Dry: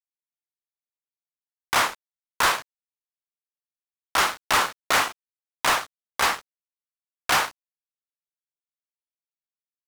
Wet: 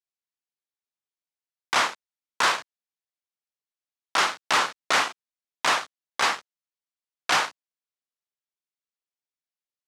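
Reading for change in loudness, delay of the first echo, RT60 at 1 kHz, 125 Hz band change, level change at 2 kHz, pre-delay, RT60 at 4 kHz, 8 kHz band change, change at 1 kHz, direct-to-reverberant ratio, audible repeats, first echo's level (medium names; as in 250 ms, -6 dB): -1.0 dB, no echo, no reverb, -6.0 dB, -1.0 dB, no reverb, no reverb, -2.5 dB, -1.0 dB, no reverb, no echo, no echo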